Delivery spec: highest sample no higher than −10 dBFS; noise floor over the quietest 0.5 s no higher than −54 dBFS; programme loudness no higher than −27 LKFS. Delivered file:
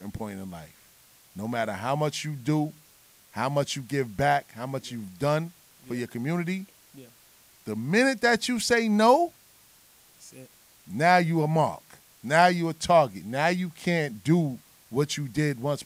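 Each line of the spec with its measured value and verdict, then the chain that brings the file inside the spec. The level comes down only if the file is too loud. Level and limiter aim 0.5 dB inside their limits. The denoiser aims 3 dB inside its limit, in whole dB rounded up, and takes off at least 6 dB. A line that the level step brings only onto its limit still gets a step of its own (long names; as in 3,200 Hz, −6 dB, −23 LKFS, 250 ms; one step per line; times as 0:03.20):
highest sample −5.5 dBFS: out of spec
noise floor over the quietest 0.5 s −57 dBFS: in spec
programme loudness −26.0 LKFS: out of spec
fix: level −1.5 dB
brickwall limiter −10.5 dBFS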